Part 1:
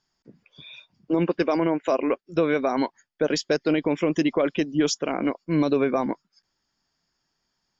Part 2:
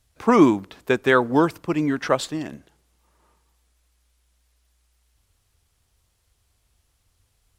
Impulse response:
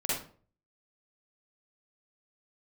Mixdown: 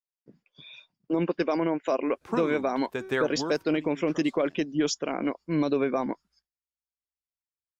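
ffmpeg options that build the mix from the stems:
-filter_complex "[0:a]equalizer=f=70:w=2:g=-13,volume=-3.5dB,asplit=2[a][b];[1:a]bandreject=f=189.9:t=h:w=4,bandreject=f=379.8:t=h:w=4,bandreject=f=569.7:t=h:w=4,bandreject=f=759.6:t=h:w=4,bandreject=f=949.5:t=h:w=4,bandreject=f=1.1394k:t=h:w=4,bandreject=f=1.3293k:t=h:w=4,bandreject=f=1.5192k:t=h:w=4,bandreject=f=1.7091k:t=h:w=4,bandreject=f=1.899k:t=h:w=4,bandreject=f=2.0889k:t=h:w=4,bandreject=f=2.2788k:t=h:w=4,bandreject=f=2.4687k:t=h:w=4,bandreject=f=2.6586k:t=h:w=4,bandreject=f=2.8485k:t=h:w=4,bandreject=f=3.0384k:t=h:w=4,bandreject=f=3.2283k:t=h:w=4,bandreject=f=3.4182k:t=h:w=4,bandreject=f=3.6081k:t=h:w=4,bandreject=f=3.798k:t=h:w=4,bandreject=f=3.9879k:t=h:w=4,bandreject=f=4.1778k:t=h:w=4,bandreject=f=4.3677k:t=h:w=4,bandreject=f=4.5576k:t=h:w=4,bandreject=f=4.7475k:t=h:w=4,bandreject=f=4.9374k:t=h:w=4,bandreject=f=5.1273k:t=h:w=4,bandreject=f=5.3172k:t=h:w=4,bandreject=f=5.5071k:t=h:w=4,bandreject=f=5.697k:t=h:w=4,bandreject=f=5.8869k:t=h:w=4,bandreject=f=6.0768k:t=h:w=4,bandreject=f=6.2667k:t=h:w=4,bandreject=f=6.4566k:t=h:w=4,acompressor=threshold=-17dB:ratio=6,adelay=2050,volume=-2dB,afade=t=out:st=3.53:d=0.31:silence=0.298538[c];[b]apad=whole_len=425043[d];[c][d]sidechaincompress=threshold=-34dB:ratio=5:attack=44:release=672[e];[a][e]amix=inputs=2:normalize=0,agate=range=-33dB:threshold=-55dB:ratio=3:detection=peak"

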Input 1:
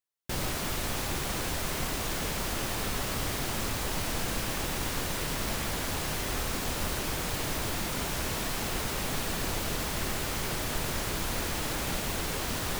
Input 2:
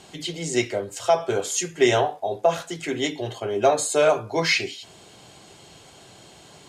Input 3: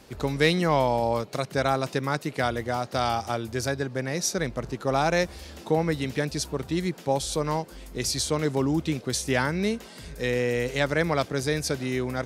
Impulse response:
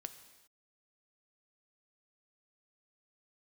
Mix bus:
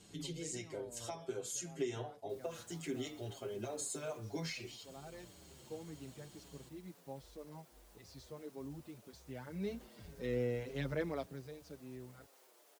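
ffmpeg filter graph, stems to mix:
-filter_complex "[0:a]highpass=f=450:w=0.5412,highpass=f=450:w=1.3066,tiltshelf=f=750:g=3.5,alimiter=level_in=10.5dB:limit=-24dB:level=0:latency=1:release=145,volume=-10.5dB,adelay=2000,volume=-15dB[a];[1:a]equalizer=f=720:t=o:w=1:g=-8,acompressor=threshold=-28dB:ratio=5,volume=-4.5dB,asplit=2[b][c];[2:a]lowpass=4k,volume=-7dB,afade=t=in:st=9.44:d=0.3:silence=0.251189,afade=t=out:st=11:d=0.43:silence=0.251189[d];[c]apad=whole_len=540533[e];[d][e]sidechaincompress=threshold=-39dB:ratio=8:attack=16:release=1090[f];[a][b][f]amix=inputs=3:normalize=0,equalizer=f=1.9k:w=0.39:g=-8,asplit=2[g][h];[h]adelay=6.4,afreqshift=-1.9[i];[g][i]amix=inputs=2:normalize=1"

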